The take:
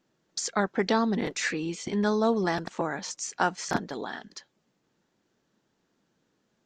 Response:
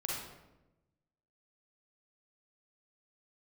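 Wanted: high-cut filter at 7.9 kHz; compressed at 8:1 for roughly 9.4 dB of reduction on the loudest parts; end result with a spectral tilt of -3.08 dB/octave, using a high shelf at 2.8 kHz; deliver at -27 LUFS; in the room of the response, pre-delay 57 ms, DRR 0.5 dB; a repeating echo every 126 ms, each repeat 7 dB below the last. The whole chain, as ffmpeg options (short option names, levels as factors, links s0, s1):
-filter_complex "[0:a]lowpass=7900,highshelf=f=2800:g=5.5,acompressor=threshold=0.0355:ratio=8,aecho=1:1:126|252|378|504|630:0.447|0.201|0.0905|0.0407|0.0183,asplit=2[s0][s1];[1:a]atrim=start_sample=2205,adelay=57[s2];[s1][s2]afir=irnorm=-1:irlink=0,volume=0.668[s3];[s0][s3]amix=inputs=2:normalize=0,volume=1.5"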